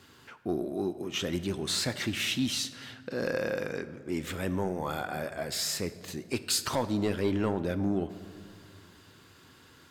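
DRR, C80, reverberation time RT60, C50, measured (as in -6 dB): 11.0 dB, 15.5 dB, 2.2 s, 14.0 dB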